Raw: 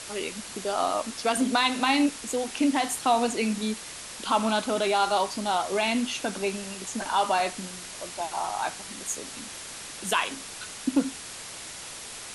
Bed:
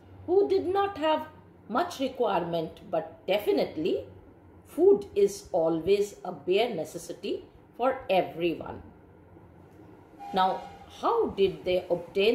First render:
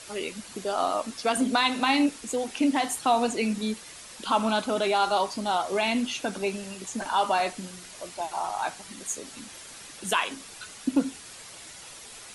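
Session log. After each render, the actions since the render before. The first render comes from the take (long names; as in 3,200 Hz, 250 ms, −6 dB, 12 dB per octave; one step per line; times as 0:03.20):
broadband denoise 7 dB, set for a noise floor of −41 dBFS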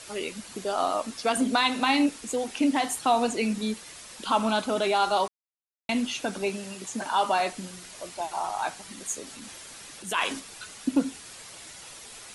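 0:05.28–0:05.89: silence
0:06.49–0:07.52: high-pass filter 91 Hz
0:09.24–0:10.40: transient designer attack −7 dB, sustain +5 dB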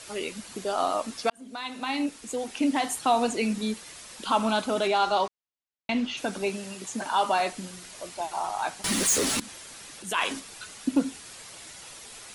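0:01.30–0:03.32: fade in equal-power
0:04.87–0:06.16: low-pass filter 7,600 Hz → 4,000 Hz
0:08.84–0:09.40: leveller curve on the samples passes 5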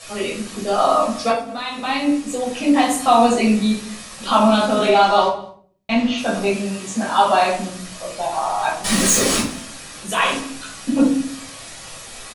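single-tap delay 203 ms −22 dB
rectangular room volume 450 cubic metres, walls furnished, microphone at 6 metres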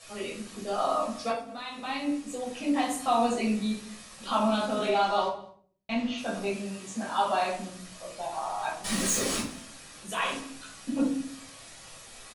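level −11.5 dB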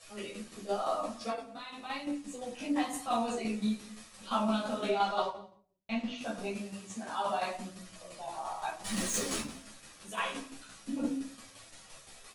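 shaped tremolo saw down 5.8 Hz, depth 55%
multi-voice chorus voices 2, 0.95 Hz, delay 12 ms, depth 3 ms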